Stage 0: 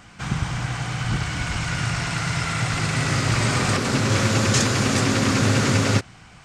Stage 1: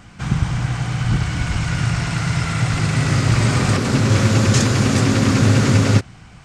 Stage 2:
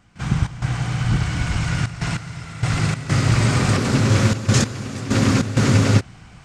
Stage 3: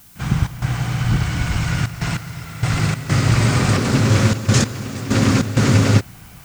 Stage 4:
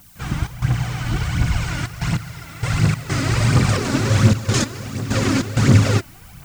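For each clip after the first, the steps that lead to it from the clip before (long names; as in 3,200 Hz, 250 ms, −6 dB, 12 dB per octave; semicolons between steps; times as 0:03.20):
low-shelf EQ 330 Hz +7.5 dB
gate pattern ".xx.xxxxxxxx.x.." 97 BPM −12 dB; level −1 dB
background noise blue −49 dBFS; level +1.5 dB
phase shifter 1.4 Hz, delay 3.6 ms, feedback 53%; level −3 dB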